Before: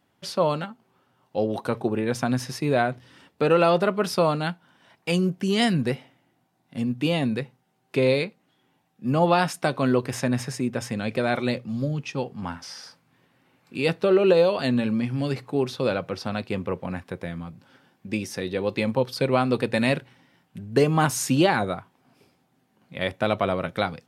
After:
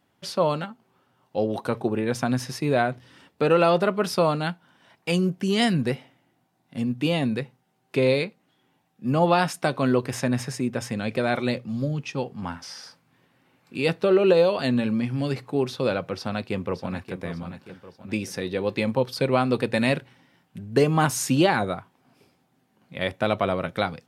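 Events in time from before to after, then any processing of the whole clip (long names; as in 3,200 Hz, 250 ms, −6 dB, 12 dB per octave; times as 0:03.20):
0:16.13–0:17.19: delay throw 580 ms, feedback 45%, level −10.5 dB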